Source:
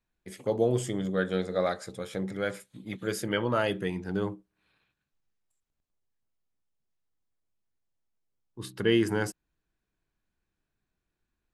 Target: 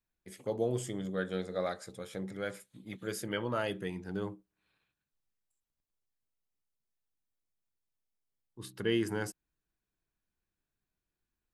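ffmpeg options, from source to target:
-af "highshelf=f=7800:g=5,volume=0.473"

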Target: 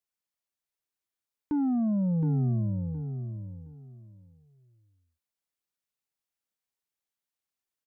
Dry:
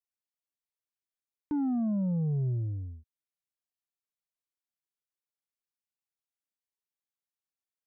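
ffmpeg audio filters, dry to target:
-af "aecho=1:1:717|1434|2151:0.398|0.0836|0.0176,volume=1.33"

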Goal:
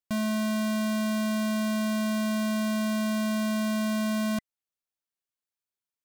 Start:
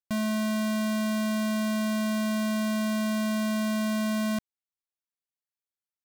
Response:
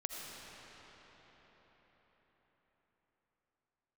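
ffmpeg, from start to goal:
-af "bandreject=f=2000:w=29"

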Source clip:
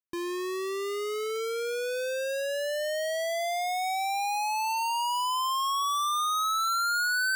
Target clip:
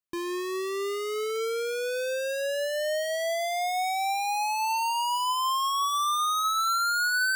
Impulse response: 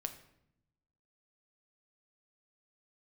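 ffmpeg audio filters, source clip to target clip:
-filter_complex "[0:a]asplit=2[s0][s1];[1:a]atrim=start_sample=2205,atrim=end_sample=3087[s2];[s1][s2]afir=irnorm=-1:irlink=0,volume=0.596[s3];[s0][s3]amix=inputs=2:normalize=0,volume=0.794"

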